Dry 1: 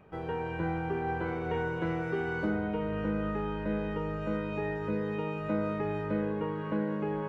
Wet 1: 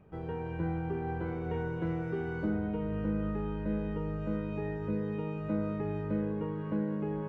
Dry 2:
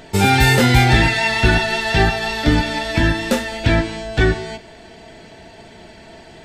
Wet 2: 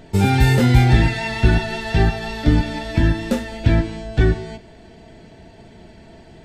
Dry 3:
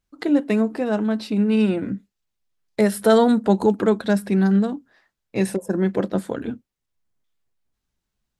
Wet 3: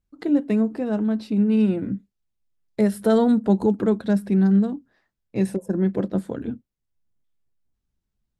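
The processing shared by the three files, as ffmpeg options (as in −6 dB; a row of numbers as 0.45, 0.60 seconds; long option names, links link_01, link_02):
-af "lowshelf=frequency=410:gain=11,volume=-8.5dB"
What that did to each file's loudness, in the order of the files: −1.5, −2.0, −1.0 LU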